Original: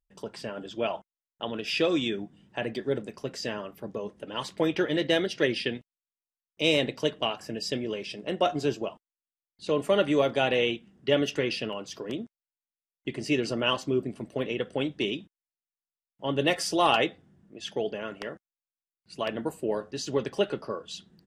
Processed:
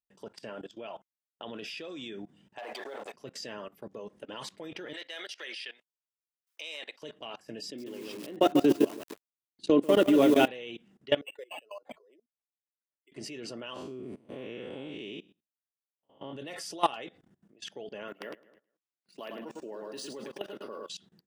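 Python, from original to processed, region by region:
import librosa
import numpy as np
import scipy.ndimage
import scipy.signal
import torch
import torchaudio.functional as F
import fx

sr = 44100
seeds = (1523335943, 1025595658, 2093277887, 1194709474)

y = fx.chain(x, sr, fx.over_compress(threshold_db=-34.0, ratio=-1.0),
    fx.leveller(passes=2),
    fx.highpass_res(hz=730.0, q=2.4), at=(2.58, 3.14))
y = fx.chain(y, sr, fx.highpass(hz=960.0, slope=12),
    fx.band_squash(depth_pct=40), at=(4.93, 7.02))
y = fx.chain(y, sr, fx.peak_eq(hz=300.0, db=13.0, octaves=0.84),
    fx.echo_crushed(ms=146, feedback_pct=35, bits=6, wet_db=-4.5), at=(7.63, 10.48))
y = fx.chain(y, sr, fx.spec_expand(power=2.2),
    fx.highpass(hz=680.0, slope=24),
    fx.resample_linear(factor=8), at=(11.21, 13.12))
y = fx.chain(y, sr, fx.spec_blur(span_ms=166.0),
    fx.peak_eq(hz=5700.0, db=-4.0, octaves=1.0), at=(13.74, 16.33))
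y = fx.chain(y, sr, fx.highpass(hz=180.0, slope=24),
    fx.echo_feedback(ms=106, feedback_pct=31, wet_db=-8.0),
    fx.resample_linear(factor=3), at=(18.08, 20.89))
y = fx.highpass(y, sr, hz=180.0, slope=6)
y = fx.high_shelf(y, sr, hz=10000.0, db=3.0)
y = fx.level_steps(y, sr, step_db=21)
y = y * 10.0 ** (1.0 / 20.0)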